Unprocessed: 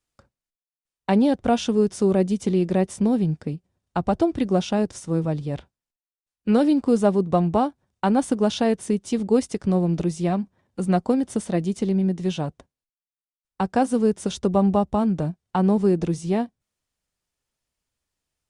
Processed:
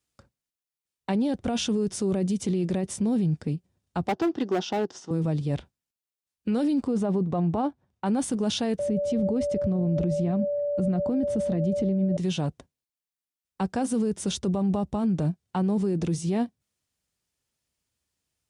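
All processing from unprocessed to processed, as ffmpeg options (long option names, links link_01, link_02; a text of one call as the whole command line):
ffmpeg -i in.wav -filter_complex "[0:a]asettb=1/sr,asplit=3[link_01][link_02][link_03];[link_01]atrim=end=4.074[link_04];[link_02]atrim=start=4.07:end=5.11,asetpts=PTS-STARTPTS,afade=type=in:duration=0.004:curve=qsin,afade=type=out:start_time=1.036:duration=0.004:curve=qsin,highpass=330,equalizer=frequency=380:width_type=q:width=4:gain=4,equalizer=frequency=560:width_type=q:width=4:gain=-5,equalizer=frequency=800:width_type=q:width=4:gain=5,equalizer=frequency=2300:width_type=q:width=4:gain=-10,equalizer=frequency=4000:width_type=q:width=4:gain=-5,lowpass=frequency=5500:width=0.5412,lowpass=frequency=5500:width=1.3066,asoftclip=type=hard:threshold=-20.5dB[link_05];[link_03]atrim=start=5.106[link_06];[link_04][link_05]acrossfade=duration=0.004:curve1=hsin:curve2=qsin[link_07];[link_07][link_06]acrossfade=duration=0.004:curve1=qsin:curve2=hsin,asettb=1/sr,asplit=3[link_08][link_09][link_10];[link_08]atrim=end=6.874[link_11];[link_09]atrim=start=6.87:end=8.06,asetpts=PTS-STARTPTS,afade=type=in:duration=0.004:curve=qsin,afade=type=out:start_time=1.186:duration=0.004:curve=qsin,lowpass=frequency=2400:poles=1,equalizer=frequency=840:width=1.5:gain=3[link_12];[link_10]atrim=start=8.056[link_13];[link_11][link_12]acrossfade=duration=0.004:curve1=hsin:curve2=qsin[link_14];[link_14][link_13]acrossfade=duration=0.004:curve1=qsin:curve2=hsin,asettb=1/sr,asplit=3[link_15][link_16][link_17];[link_15]atrim=end=8.794[link_18];[link_16]atrim=start=8.79:end=12.17,asetpts=PTS-STARTPTS,afade=type=in:duration=0.004:curve=qsin,afade=type=out:start_time=3.376:duration=0.004:curve=qsin,lowpass=frequency=1800:poles=1,aeval=exprs='val(0)+0.0631*sin(2*PI*580*n/s)':channel_layout=same,lowshelf=frequency=160:gain=11[link_19];[link_17]atrim=start=12.166[link_20];[link_18][link_19]acrossfade=duration=0.004:curve1=hsin:curve2=qsin[link_21];[link_21][link_20]acrossfade=duration=0.004:curve1=qsin:curve2=hsin,highpass=59,equalizer=frequency=930:width_type=o:width=2.6:gain=-4.5,alimiter=limit=-21.5dB:level=0:latency=1:release=12,volume=2.5dB" out.wav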